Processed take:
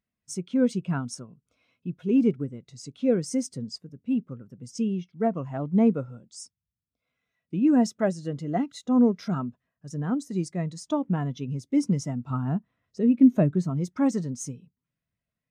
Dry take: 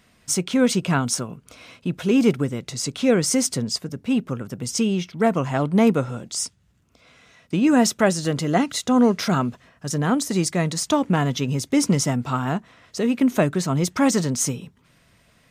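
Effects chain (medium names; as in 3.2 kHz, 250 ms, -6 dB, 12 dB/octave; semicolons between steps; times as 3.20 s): 12.30–13.70 s: bass shelf 330 Hz +6 dB; spectral contrast expander 1.5:1; trim -3 dB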